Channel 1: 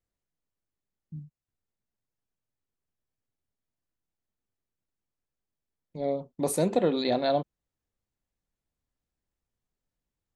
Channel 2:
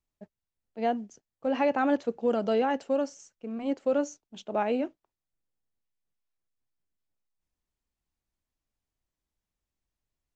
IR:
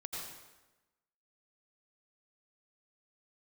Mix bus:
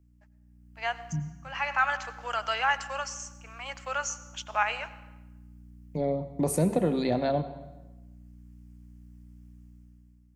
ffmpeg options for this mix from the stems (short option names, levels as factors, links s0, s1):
-filter_complex "[0:a]aeval=exprs='val(0)+0.00126*(sin(2*PI*60*n/s)+sin(2*PI*2*60*n/s)/2+sin(2*PI*3*60*n/s)/3+sin(2*PI*4*60*n/s)/4+sin(2*PI*5*60*n/s)/5)':c=same,acrossover=split=160[s0][s1];[s1]acompressor=threshold=0.0112:ratio=2.5[s2];[s0][s2]amix=inputs=2:normalize=0,volume=0.708,asplit=3[s3][s4][s5];[s4]volume=0.316[s6];[1:a]highpass=f=1100:w=0.5412,highpass=f=1100:w=1.3066,volume=1.06,asplit=2[s7][s8];[s8]volume=0.224[s9];[s5]apad=whole_len=456664[s10];[s7][s10]sidechaincompress=threshold=0.00178:ratio=8:attack=16:release=758[s11];[2:a]atrim=start_sample=2205[s12];[s6][s9]amix=inputs=2:normalize=0[s13];[s13][s12]afir=irnorm=-1:irlink=0[s14];[s3][s11][s14]amix=inputs=3:normalize=0,dynaudnorm=f=200:g=7:m=3.35,equalizer=f=3800:w=3.4:g=-8.5"